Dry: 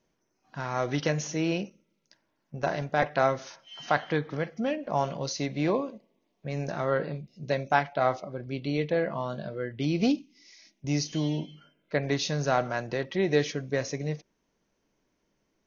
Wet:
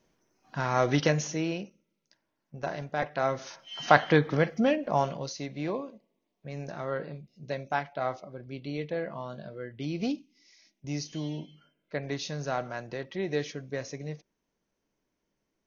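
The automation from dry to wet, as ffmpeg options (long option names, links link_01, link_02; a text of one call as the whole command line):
ffmpeg -i in.wav -af "volume=15dB,afade=type=out:start_time=0.93:duration=0.62:silence=0.354813,afade=type=in:start_time=3.21:duration=0.7:silence=0.281838,afade=type=out:start_time=4.5:duration=0.84:silence=0.251189" out.wav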